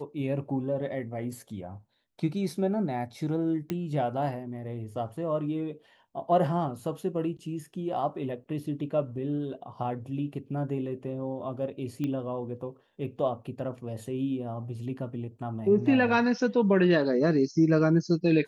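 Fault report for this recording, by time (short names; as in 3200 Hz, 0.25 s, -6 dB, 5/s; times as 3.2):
3.7 pop -18 dBFS
12.04 pop -21 dBFS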